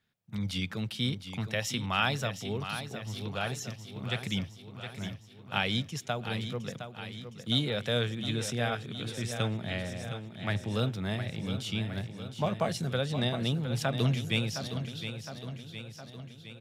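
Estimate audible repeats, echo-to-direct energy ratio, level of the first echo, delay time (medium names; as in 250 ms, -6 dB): 6, -7.5 dB, -9.5 dB, 713 ms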